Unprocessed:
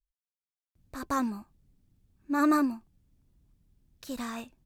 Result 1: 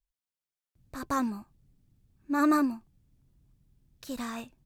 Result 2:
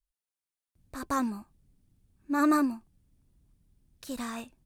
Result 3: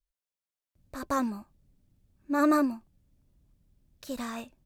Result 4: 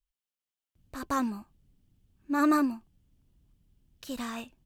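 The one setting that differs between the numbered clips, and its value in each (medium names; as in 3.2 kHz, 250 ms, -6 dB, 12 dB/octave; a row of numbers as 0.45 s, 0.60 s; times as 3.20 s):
peaking EQ, frequency: 130 Hz, 9.4 kHz, 580 Hz, 3 kHz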